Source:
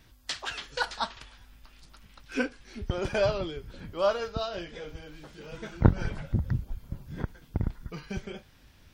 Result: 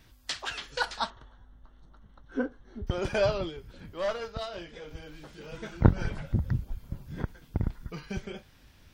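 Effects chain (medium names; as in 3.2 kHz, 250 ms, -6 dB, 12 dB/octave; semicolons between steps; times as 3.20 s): 1.10–2.87 s: boxcar filter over 18 samples; 3.49–4.91 s: valve stage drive 23 dB, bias 0.65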